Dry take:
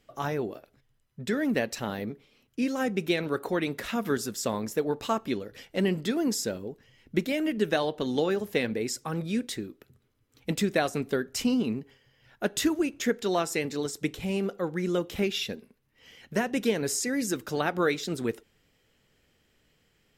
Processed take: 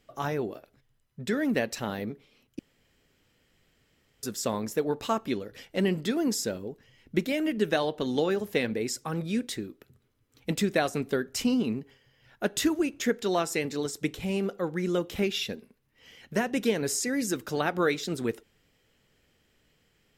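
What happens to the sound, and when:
2.59–4.23 room tone

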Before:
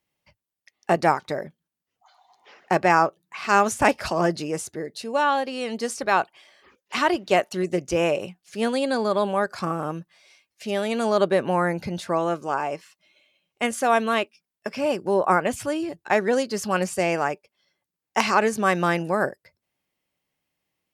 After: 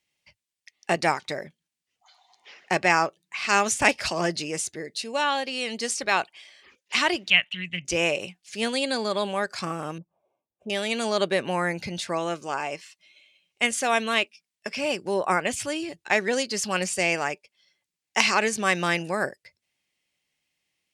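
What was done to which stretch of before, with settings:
7.3–7.85 EQ curve 170 Hz 0 dB, 400 Hz -24 dB, 3100 Hz +9 dB, 4900 Hz -24 dB
9.98–10.7 inverse Chebyshev low-pass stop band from 1800 Hz
whole clip: band shelf 4200 Hz +10 dB 2.6 oct; gain -4.5 dB

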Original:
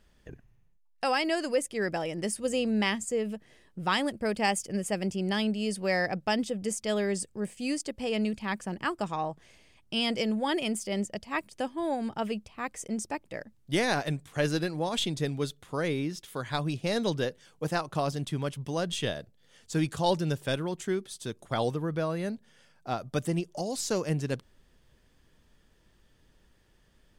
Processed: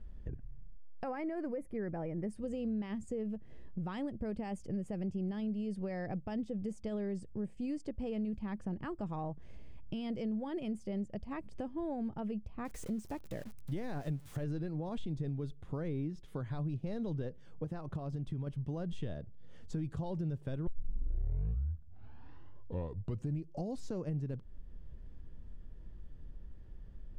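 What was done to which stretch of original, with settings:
1.04–2.3 spectral gain 2500–10000 Hz -13 dB
12.65–14.44 switching spikes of -26.5 dBFS
17.64–18.47 compressor, threshold -32 dBFS
20.67 tape start 2.99 s
whole clip: limiter -23 dBFS; tilt -4.5 dB/oct; compressor 2.5:1, threshold -38 dBFS; gain -2.5 dB

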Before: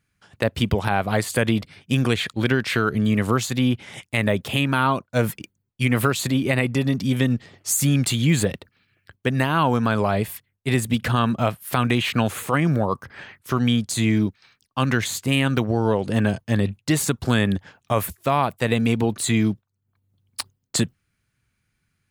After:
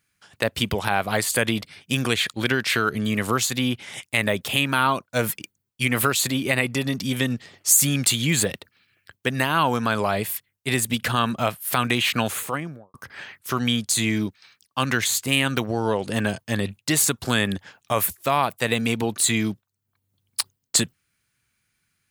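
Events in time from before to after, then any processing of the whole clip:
12.26–12.94 studio fade out
whole clip: tilt +2 dB/oct

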